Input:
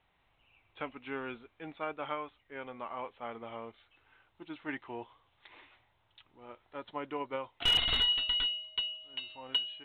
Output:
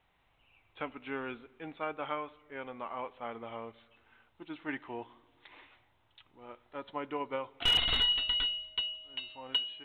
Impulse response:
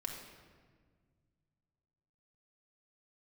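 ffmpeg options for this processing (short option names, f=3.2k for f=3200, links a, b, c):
-filter_complex "[0:a]asplit=2[a][b];[1:a]atrim=start_sample=2205,lowpass=4.2k[c];[b][c]afir=irnorm=-1:irlink=0,volume=-16dB[d];[a][d]amix=inputs=2:normalize=0"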